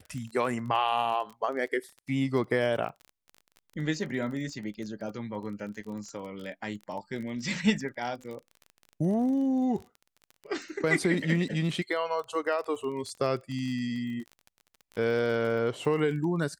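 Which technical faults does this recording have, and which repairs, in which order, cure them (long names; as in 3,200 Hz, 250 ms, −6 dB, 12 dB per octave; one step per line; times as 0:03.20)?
surface crackle 27 per second −37 dBFS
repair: click removal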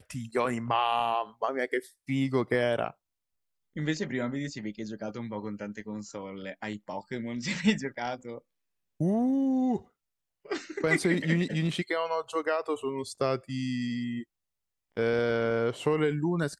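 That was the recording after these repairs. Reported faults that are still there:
none of them is left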